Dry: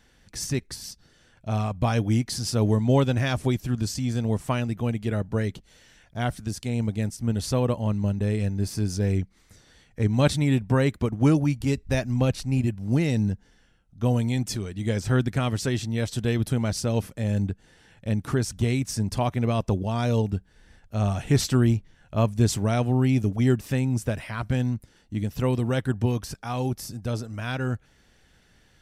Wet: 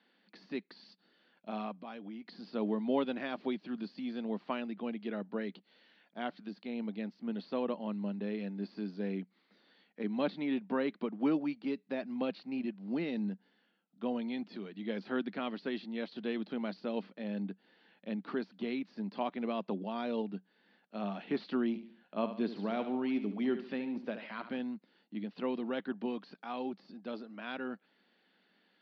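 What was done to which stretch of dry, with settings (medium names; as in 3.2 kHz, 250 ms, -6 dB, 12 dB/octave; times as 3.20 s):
1.74–2.32 s: compression, threshold -30 dBFS
21.68–24.59 s: feedback delay 72 ms, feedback 41%, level -11 dB
whole clip: de-esser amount 90%; Chebyshev band-pass 190–4500 Hz, order 5; trim -8 dB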